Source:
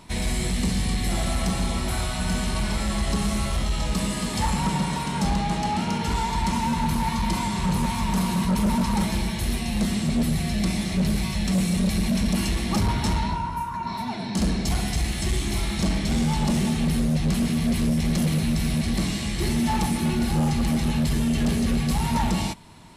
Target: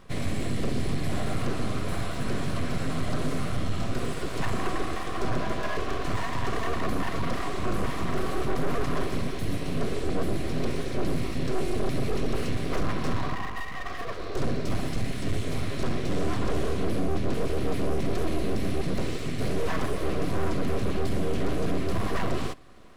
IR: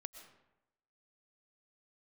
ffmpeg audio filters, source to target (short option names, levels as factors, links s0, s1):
-filter_complex "[0:a]highshelf=f=2400:g=-12,acrossover=split=5200[s0][s1];[s1]alimiter=level_in=5.96:limit=0.0631:level=0:latency=1:release=178,volume=0.168[s2];[s0][s2]amix=inputs=2:normalize=0,aeval=exprs='abs(val(0))':c=same,asuperstop=centerf=870:order=4:qfactor=5.7"